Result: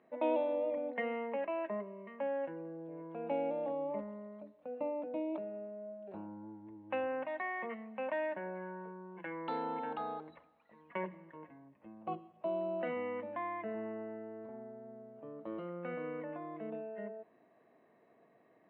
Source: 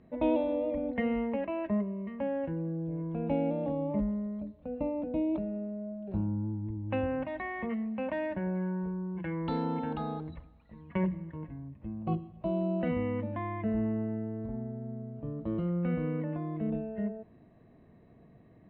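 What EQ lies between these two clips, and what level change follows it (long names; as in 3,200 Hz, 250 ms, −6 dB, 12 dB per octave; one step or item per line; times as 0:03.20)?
band-pass filter 510–2,900 Hz
0.0 dB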